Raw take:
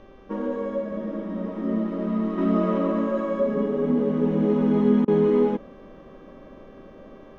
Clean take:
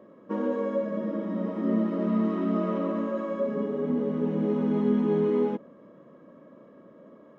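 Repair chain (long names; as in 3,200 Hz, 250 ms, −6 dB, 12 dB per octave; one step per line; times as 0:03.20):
hum removal 390.1 Hz, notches 9
repair the gap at 0:05.05, 27 ms
downward expander −38 dBFS, range −21 dB
level 0 dB, from 0:02.38 −5 dB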